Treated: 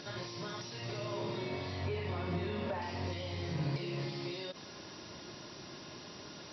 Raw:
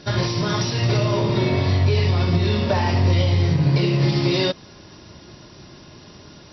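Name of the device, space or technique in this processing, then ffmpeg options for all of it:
de-esser from a sidechain: -filter_complex "[0:a]asettb=1/sr,asplit=3[link_01][link_02][link_03];[link_01]atrim=end=1.864[link_04];[link_02]atrim=start=1.86:end=2.82,asetpts=PTS-STARTPTS,afade=type=in:duration=0.004:curve=qsin,afade=type=out:start_time=0.956:duration=0.004:curve=qsin,acrossover=split=2900[link_05][link_06];[link_06]acompressor=threshold=-49dB:ratio=4:attack=1:release=60[link_07];[link_05][link_07]amix=inputs=2:normalize=0[link_08];[link_03]atrim=start=2.816[link_09];[link_04][link_08]acrossfade=duration=0.004:curve1=hsin:curve2=qsin[link_10];[link_10][link_09]acrossfade=duration=0.004:curve1=qsin:curve2=hsin,highpass=frequency=280:poles=1,asplit=2[link_11][link_12];[link_12]highpass=frequency=4500:poles=1,apad=whole_len=287540[link_13];[link_11][link_13]sidechaincompress=threshold=-59dB:ratio=4:attack=3.5:release=34,volume=4.5dB"

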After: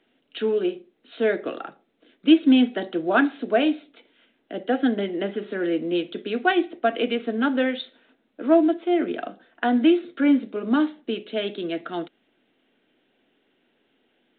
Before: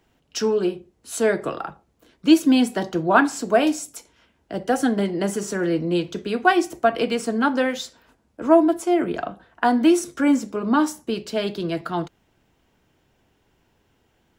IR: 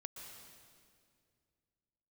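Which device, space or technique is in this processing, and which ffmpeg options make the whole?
telephone: -af "highpass=390,lowpass=3400,equalizer=frequency=250:width_type=o:width=0.67:gain=9,equalizer=frequency=1000:width_type=o:width=0.67:gain=-12,equalizer=frequency=4000:width_type=o:width=0.67:gain=7" -ar 8000 -c:a pcm_mulaw

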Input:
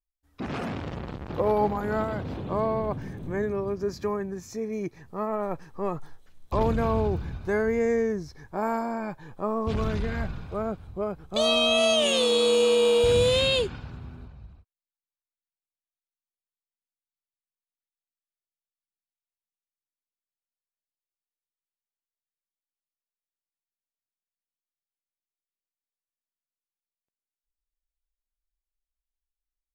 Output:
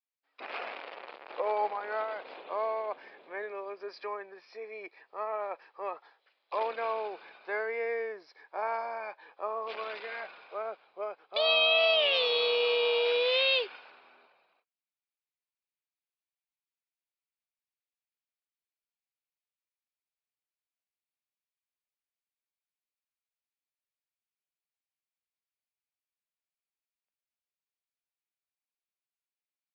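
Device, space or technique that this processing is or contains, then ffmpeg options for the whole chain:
musical greeting card: -af "aresample=11025,aresample=44100,highpass=frequency=510:width=0.5412,highpass=frequency=510:width=1.3066,equalizer=frequency=2400:width_type=o:width=0.48:gain=7,volume=-3.5dB"

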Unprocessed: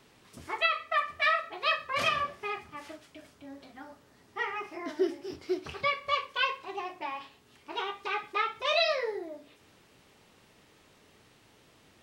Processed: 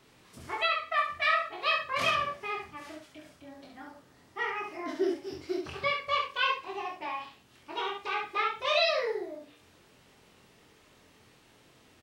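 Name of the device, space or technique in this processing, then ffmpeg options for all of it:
slapback doubling: -filter_complex "[0:a]asplit=3[link_01][link_02][link_03];[link_02]adelay=23,volume=-3.5dB[link_04];[link_03]adelay=68,volume=-4.5dB[link_05];[link_01][link_04][link_05]amix=inputs=3:normalize=0,volume=-2dB"

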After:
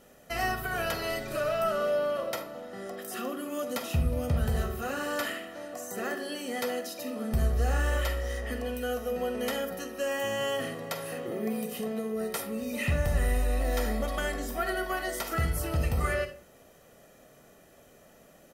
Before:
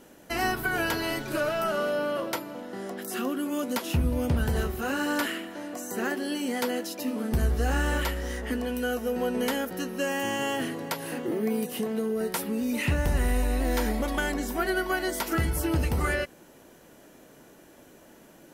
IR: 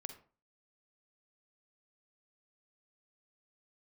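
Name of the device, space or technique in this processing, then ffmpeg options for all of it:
microphone above a desk: -filter_complex "[0:a]aecho=1:1:1.6:0.55[link_01];[1:a]atrim=start_sample=2205[link_02];[link_01][link_02]afir=irnorm=-1:irlink=0"

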